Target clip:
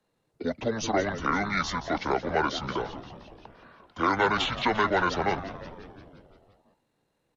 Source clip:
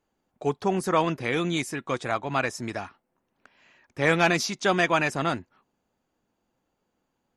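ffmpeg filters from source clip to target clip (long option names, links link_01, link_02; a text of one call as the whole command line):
ffmpeg -i in.wav -filter_complex "[0:a]lowshelf=frequency=420:gain=-8,acrossover=split=300|760|2000[link_01][link_02][link_03][link_04];[link_01]acompressor=threshold=-40dB:ratio=4[link_05];[link_02]acompressor=threshold=-34dB:ratio=4[link_06];[link_03]acompressor=threshold=-33dB:ratio=4[link_07];[link_04]acompressor=threshold=-31dB:ratio=4[link_08];[link_05][link_06][link_07][link_08]amix=inputs=4:normalize=0,acrossover=split=440[link_09][link_10];[link_09]alimiter=level_in=14dB:limit=-24dB:level=0:latency=1:release=32,volume=-14dB[link_11];[link_11][link_10]amix=inputs=2:normalize=0,asetrate=26222,aresample=44100,atempo=1.68179,asplit=9[link_12][link_13][link_14][link_15][link_16][link_17][link_18][link_19][link_20];[link_13]adelay=174,afreqshift=-130,volume=-12.5dB[link_21];[link_14]adelay=348,afreqshift=-260,volume=-16.2dB[link_22];[link_15]adelay=522,afreqshift=-390,volume=-20dB[link_23];[link_16]adelay=696,afreqshift=-520,volume=-23.7dB[link_24];[link_17]adelay=870,afreqshift=-650,volume=-27.5dB[link_25];[link_18]adelay=1044,afreqshift=-780,volume=-31.2dB[link_26];[link_19]adelay=1218,afreqshift=-910,volume=-35dB[link_27];[link_20]adelay=1392,afreqshift=-1040,volume=-38.7dB[link_28];[link_12][link_21][link_22][link_23][link_24][link_25][link_26][link_27][link_28]amix=inputs=9:normalize=0,volume=5.5dB" out.wav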